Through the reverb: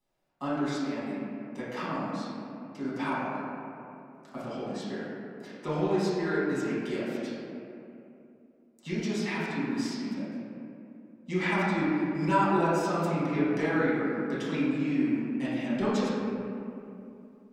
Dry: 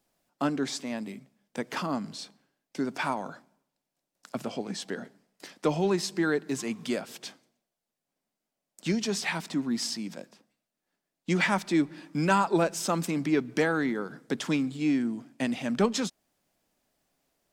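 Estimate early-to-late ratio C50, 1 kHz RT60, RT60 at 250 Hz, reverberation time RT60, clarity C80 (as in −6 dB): −3.0 dB, 2.6 s, 3.3 s, 2.7 s, −1.0 dB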